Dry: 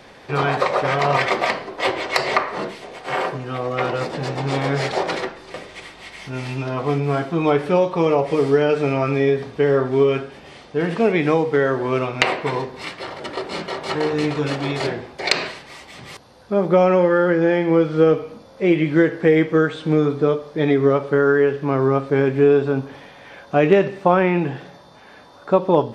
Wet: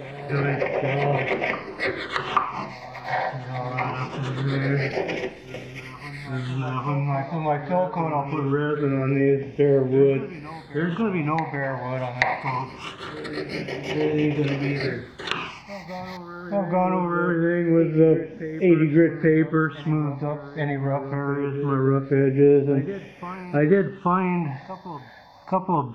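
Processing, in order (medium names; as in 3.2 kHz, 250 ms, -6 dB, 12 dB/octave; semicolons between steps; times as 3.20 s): median filter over 5 samples; low-pass that closes with the level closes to 1.8 kHz, closed at -14 dBFS; phase shifter stages 8, 0.23 Hz, lowest notch 370–1300 Hz; reverse echo 833 ms -13.5 dB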